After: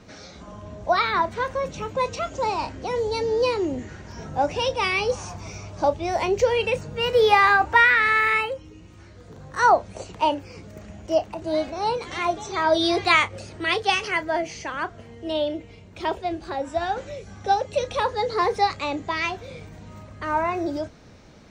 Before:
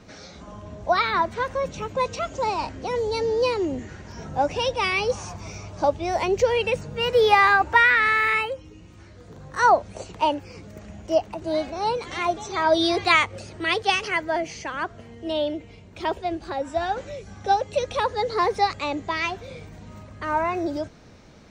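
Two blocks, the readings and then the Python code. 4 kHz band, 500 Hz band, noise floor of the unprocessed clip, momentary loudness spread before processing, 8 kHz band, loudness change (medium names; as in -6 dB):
0.0 dB, 0.0 dB, -47 dBFS, 19 LU, 0.0 dB, 0.0 dB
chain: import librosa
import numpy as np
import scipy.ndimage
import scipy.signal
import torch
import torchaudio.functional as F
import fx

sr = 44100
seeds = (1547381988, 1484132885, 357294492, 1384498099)

y = fx.doubler(x, sr, ms=32.0, db=-14)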